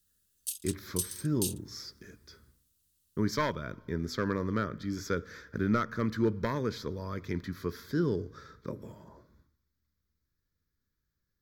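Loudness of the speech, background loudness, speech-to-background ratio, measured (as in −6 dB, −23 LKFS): −34.0 LKFS, −37.0 LKFS, 3.0 dB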